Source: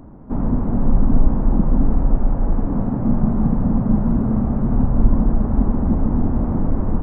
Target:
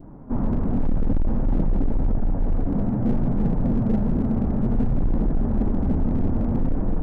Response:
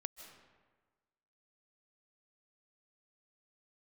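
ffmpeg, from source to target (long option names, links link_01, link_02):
-af "acontrast=67,flanger=delay=5.8:depth=6.4:regen=-43:speed=0.58:shape=triangular,asoftclip=type=hard:threshold=-12dB,adynamicequalizer=threshold=0.00398:dfrequency=1100:dqfactor=2.1:tfrequency=1100:tqfactor=2.1:attack=5:release=100:ratio=0.375:range=3:mode=cutabove:tftype=bell,volume=-4dB"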